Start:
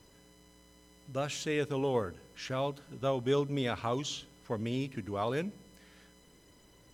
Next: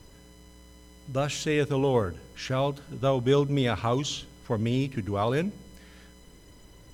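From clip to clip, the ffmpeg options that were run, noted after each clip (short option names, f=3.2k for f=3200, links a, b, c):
-af "lowshelf=f=93:g=11,volume=5.5dB"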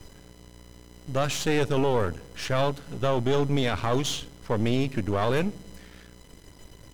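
-af "aeval=exprs='if(lt(val(0),0),0.251*val(0),val(0))':c=same,alimiter=limit=-19.5dB:level=0:latency=1:release=12,volume=6dB"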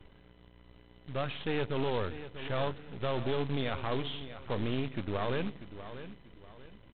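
-af "aresample=8000,acrusher=bits=3:mode=log:mix=0:aa=0.000001,aresample=44100,aecho=1:1:641|1282|1923:0.237|0.0783|0.0258,volume=-8.5dB"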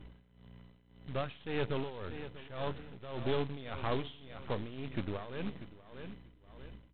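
-af "aeval=exprs='val(0)+0.00282*(sin(2*PI*60*n/s)+sin(2*PI*2*60*n/s)/2+sin(2*PI*3*60*n/s)/3+sin(2*PI*4*60*n/s)/4+sin(2*PI*5*60*n/s)/5)':c=same,tremolo=f=1.8:d=0.81"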